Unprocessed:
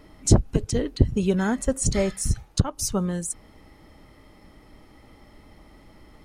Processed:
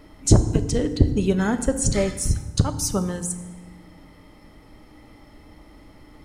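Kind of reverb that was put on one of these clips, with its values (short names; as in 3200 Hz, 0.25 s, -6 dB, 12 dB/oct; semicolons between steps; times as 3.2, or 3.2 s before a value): FDN reverb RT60 1.3 s, low-frequency decay 1.45×, high-frequency decay 0.65×, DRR 9 dB; gain +1.5 dB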